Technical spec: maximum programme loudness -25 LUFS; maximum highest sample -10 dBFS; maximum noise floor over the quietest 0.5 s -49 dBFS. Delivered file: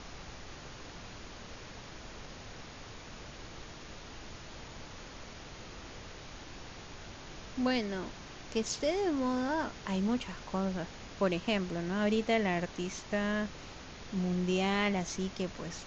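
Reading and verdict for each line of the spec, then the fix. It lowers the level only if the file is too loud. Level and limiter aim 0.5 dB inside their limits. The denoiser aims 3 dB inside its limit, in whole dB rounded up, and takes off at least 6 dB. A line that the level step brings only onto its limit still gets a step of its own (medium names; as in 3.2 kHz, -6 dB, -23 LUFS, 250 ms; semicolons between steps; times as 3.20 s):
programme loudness -33.5 LUFS: pass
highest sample -17.0 dBFS: pass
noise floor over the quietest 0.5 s -47 dBFS: fail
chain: noise reduction 6 dB, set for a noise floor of -47 dBFS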